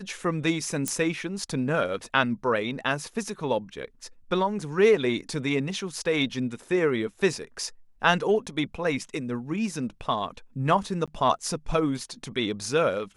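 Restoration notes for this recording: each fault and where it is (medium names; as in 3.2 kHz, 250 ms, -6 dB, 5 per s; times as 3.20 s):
0.88 s: pop -11 dBFS
11.06–11.08 s: dropout 16 ms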